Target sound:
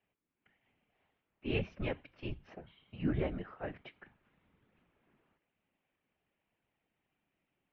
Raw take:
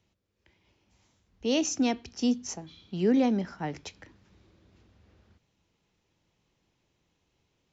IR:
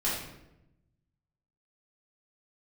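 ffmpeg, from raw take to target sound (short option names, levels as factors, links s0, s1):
-af "highpass=f=310:t=q:w=0.5412,highpass=f=310:t=q:w=1.307,lowpass=f=3100:t=q:w=0.5176,lowpass=f=3100:t=q:w=0.7071,lowpass=f=3100:t=q:w=1.932,afreqshift=-180,afftfilt=real='hypot(re,im)*cos(2*PI*random(0))':imag='hypot(re,im)*sin(2*PI*random(1))':win_size=512:overlap=0.75,volume=1.12"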